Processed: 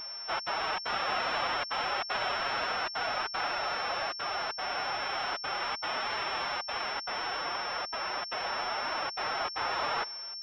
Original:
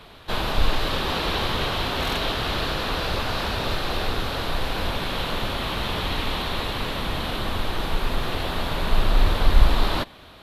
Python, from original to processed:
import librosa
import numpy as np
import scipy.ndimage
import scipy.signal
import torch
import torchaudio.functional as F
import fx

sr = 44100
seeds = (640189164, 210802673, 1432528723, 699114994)

y = scipy.signal.sosfilt(scipy.signal.butter(2, 780.0, 'highpass', fs=sr, output='sos'), x)
y = fx.step_gate(y, sr, bpm=193, pattern='xxxxx.xxxx.xxxxx', floor_db=-60.0, edge_ms=4.5)
y = fx.vibrato(y, sr, rate_hz=2.5, depth_cents=37.0)
y = fx.pitch_keep_formants(y, sr, semitones=6.5)
y = fx.pwm(y, sr, carrier_hz=5400.0)